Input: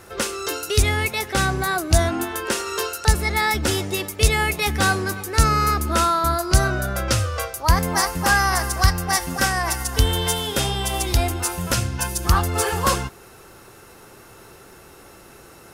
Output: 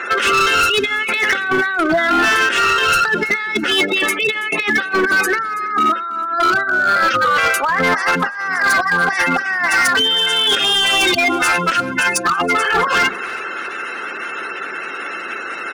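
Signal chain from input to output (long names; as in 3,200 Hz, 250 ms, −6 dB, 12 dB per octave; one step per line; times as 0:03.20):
Bessel low-pass filter 8,600 Hz
gate on every frequency bin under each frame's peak −20 dB strong
high-pass filter 230 Hz 24 dB per octave
flat-topped bell 2,100 Hz +14 dB
mains-hum notches 50/100/150/200/250/300/350 Hz
compressor whose output falls as the input rises −23 dBFS, ratio −1
gain into a clipping stage and back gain 18 dB
on a send: repeating echo 329 ms, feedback 42%, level −19 dB
on the sum: level +7 dB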